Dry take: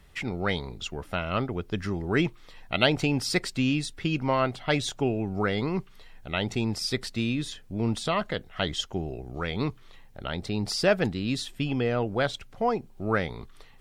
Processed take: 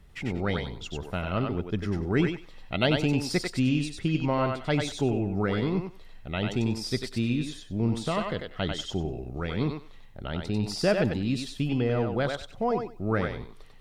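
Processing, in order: low shelf 490 Hz +8 dB; thinning echo 95 ms, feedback 20%, high-pass 450 Hz, level -3 dB; gain -5.5 dB

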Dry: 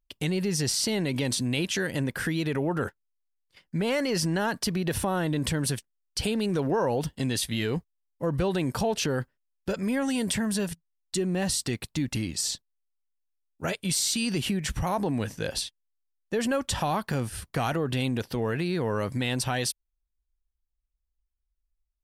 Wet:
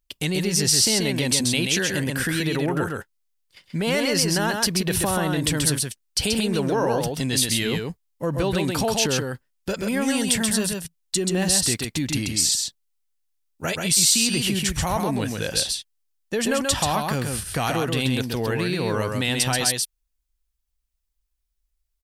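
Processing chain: high shelf 2500 Hz +7.5 dB; echo 0.132 s -4 dB; gain +2 dB

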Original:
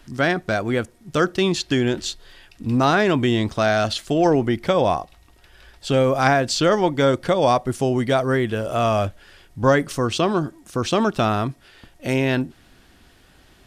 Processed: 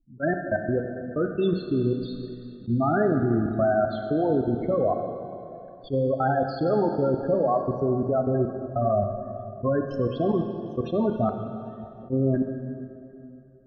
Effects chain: high shelf 4700 Hz -9.5 dB; loudest bins only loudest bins 8; level quantiser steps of 23 dB; plate-style reverb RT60 2.8 s, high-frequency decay 0.95×, DRR 4 dB; attack slew limiter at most 430 dB/s

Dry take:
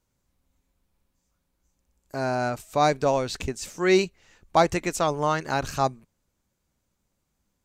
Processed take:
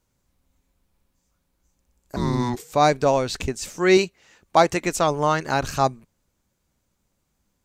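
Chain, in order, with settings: 2.16–2.72 frequency shift -490 Hz; 3.97–4.84 HPF 180 Hz 6 dB/oct; gain +3.5 dB

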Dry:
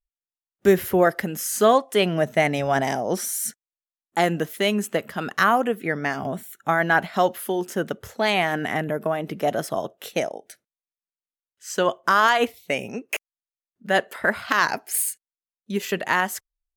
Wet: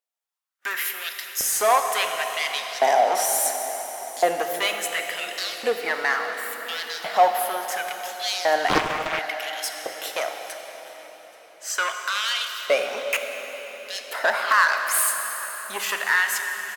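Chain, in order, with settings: notches 50/100/150 Hz; in parallel at +3 dB: limiter -14 dBFS, peak gain reduction 9.5 dB; on the sum: soft clip -13 dBFS, distortion -10 dB; LFO high-pass saw up 0.71 Hz 540–5400 Hz; echo 0.829 s -23 dB; on a send at -4 dB: reverb RT60 5.0 s, pre-delay 7 ms; 8.68–9.19 on the sum: Doppler distortion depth 0.78 ms; gain -3 dB

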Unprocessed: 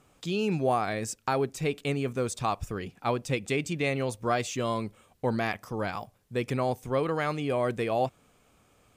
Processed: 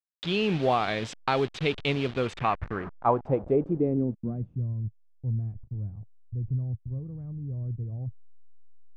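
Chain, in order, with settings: level-crossing sampler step -36.5 dBFS; low-pass sweep 3500 Hz -> 110 Hz, 2.13–4.73; gain +1.5 dB

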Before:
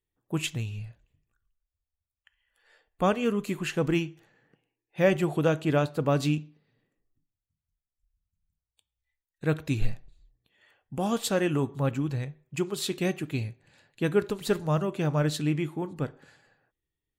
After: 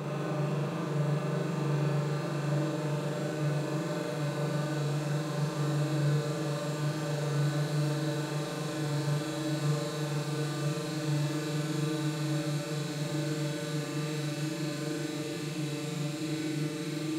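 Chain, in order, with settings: Paulstretch 37×, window 1.00 s, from 15.02; flutter echo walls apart 7.1 m, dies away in 1.2 s; gain -8.5 dB

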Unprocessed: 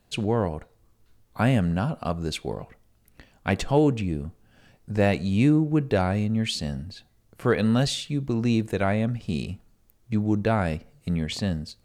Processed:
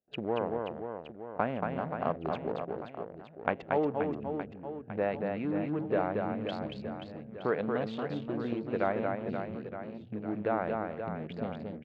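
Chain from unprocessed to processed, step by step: Wiener smoothing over 41 samples; gate with hold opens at -57 dBFS; tilt -4.5 dB/oct; compressor 6:1, threshold -17 dBFS, peak gain reduction 11.5 dB; BPF 680–2600 Hz; reverse bouncing-ball echo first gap 0.23 s, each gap 1.3×, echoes 5; gain +5 dB

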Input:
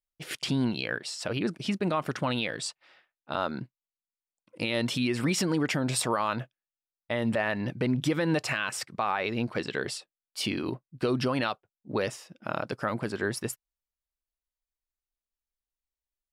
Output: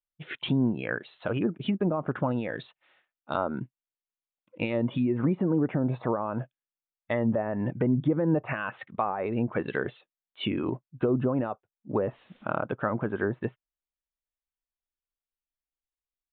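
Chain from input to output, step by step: 12.03–12.43 added noise white -52 dBFS; spectral noise reduction 8 dB; treble ducked by the level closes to 700 Hz, closed at -23.5 dBFS; downsampling 8000 Hz; gain +2.5 dB

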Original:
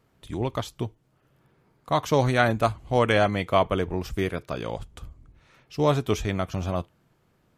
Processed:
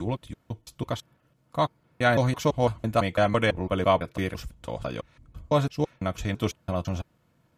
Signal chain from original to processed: slices in reverse order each 0.167 s, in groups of 3; notch comb 400 Hz

